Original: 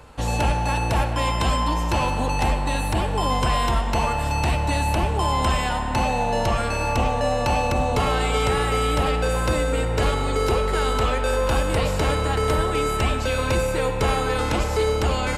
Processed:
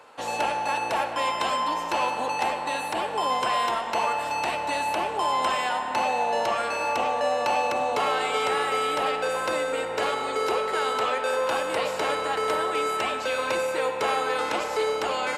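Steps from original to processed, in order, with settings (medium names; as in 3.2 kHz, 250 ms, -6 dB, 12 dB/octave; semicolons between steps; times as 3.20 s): high-pass 470 Hz 12 dB/octave; treble shelf 4.9 kHz -7 dB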